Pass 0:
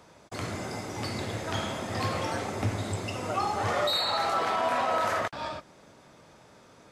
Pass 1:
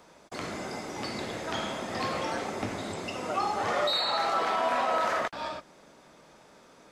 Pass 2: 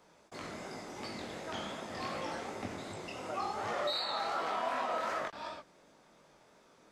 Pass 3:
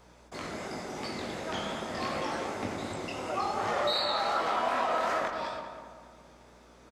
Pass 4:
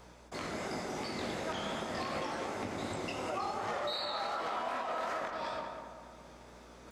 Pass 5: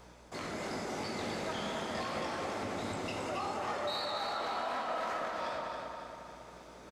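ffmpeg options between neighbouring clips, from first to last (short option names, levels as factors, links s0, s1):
-filter_complex "[0:a]acrossover=split=7200[s0][s1];[s1]acompressor=threshold=0.00158:ratio=4:attack=1:release=60[s2];[s0][s2]amix=inputs=2:normalize=0,equalizer=f=100:t=o:w=0.71:g=-14.5"
-af "flanger=delay=18.5:depth=7:speed=2.7,volume=0.596"
-filter_complex "[0:a]aeval=exprs='val(0)+0.000562*(sin(2*PI*60*n/s)+sin(2*PI*2*60*n/s)/2+sin(2*PI*3*60*n/s)/3+sin(2*PI*4*60*n/s)/4+sin(2*PI*5*60*n/s)/5)':c=same,asplit=2[s0][s1];[s1]adelay=196,lowpass=f=2100:p=1,volume=0.501,asplit=2[s2][s3];[s3]adelay=196,lowpass=f=2100:p=1,volume=0.51,asplit=2[s4][s5];[s5]adelay=196,lowpass=f=2100:p=1,volume=0.51,asplit=2[s6][s7];[s7]adelay=196,lowpass=f=2100:p=1,volume=0.51,asplit=2[s8][s9];[s9]adelay=196,lowpass=f=2100:p=1,volume=0.51,asplit=2[s10][s11];[s11]adelay=196,lowpass=f=2100:p=1,volume=0.51[s12];[s0][s2][s4][s6][s8][s10][s12]amix=inputs=7:normalize=0,volume=1.78"
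-af "areverse,acompressor=mode=upward:threshold=0.00398:ratio=2.5,areverse,alimiter=level_in=1.41:limit=0.0631:level=0:latency=1:release=240,volume=0.708"
-af "asoftclip=type=tanh:threshold=0.0376,aecho=1:1:273|546|819|1092|1365|1638:0.531|0.26|0.127|0.0625|0.0306|0.015"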